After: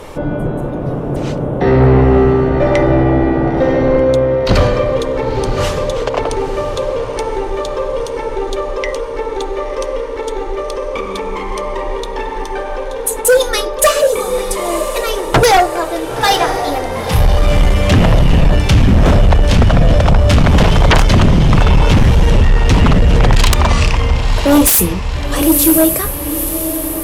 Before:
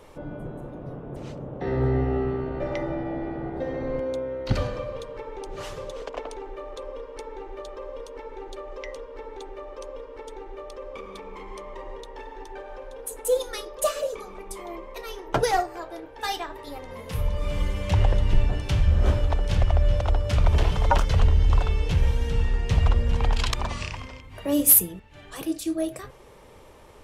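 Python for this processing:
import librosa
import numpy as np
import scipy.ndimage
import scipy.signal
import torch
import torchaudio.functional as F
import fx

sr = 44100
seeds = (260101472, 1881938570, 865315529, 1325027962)

y = fx.echo_diffused(x, sr, ms=978, feedback_pct=47, wet_db=-11.0)
y = fx.fold_sine(y, sr, drive_db=15, ceiling_db=-3.5)
y = y * 10.0 ** (-1.0 / 20.0)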